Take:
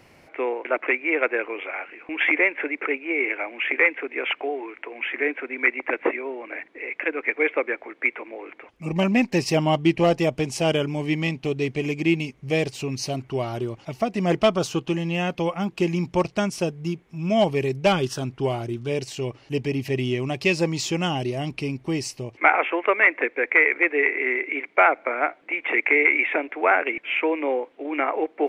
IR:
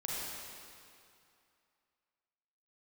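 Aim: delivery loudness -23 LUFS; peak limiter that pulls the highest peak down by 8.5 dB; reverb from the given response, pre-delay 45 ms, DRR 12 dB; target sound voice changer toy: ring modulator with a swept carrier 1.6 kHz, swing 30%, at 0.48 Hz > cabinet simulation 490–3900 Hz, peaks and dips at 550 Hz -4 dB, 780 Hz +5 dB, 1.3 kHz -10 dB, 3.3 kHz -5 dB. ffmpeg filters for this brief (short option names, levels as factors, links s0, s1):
-filter_complex "[0:a]alimiter=limit=0.251:level=0:latency=1,asplit=2[s0][s1];[1:a]atrim=start_sample=2205,adelay=45[s2];[s1][s2]afir=irnorm=-1:irlink=0,volume=0.168[s3];[s0][s3]amix=inputs=2:normalize=0,aeval=exprs='val(0)*sin(2*PI*1600*n/s+1600*0.3/0.48*sin(2*PI*0.48*n/s))':c=same,highpass=490,equalizer=f=550:t=q:w=4:g=-4,equalizer=f=780:t=q:w=4:g=5,equalizer=f=1300:t=q:w=4:g=-10,equalizer=f=3300:t=q:w=4:g=-5,lowpass=f=3900:w=0.5412,lowpass=f=3900:w=1.3066,volume=2"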